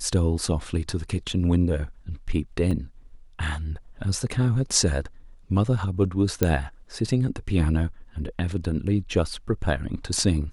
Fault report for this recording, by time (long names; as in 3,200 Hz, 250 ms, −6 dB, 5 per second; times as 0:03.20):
0:02.71: drop-out 3.6 ms
0:06.43: click −6 dBFS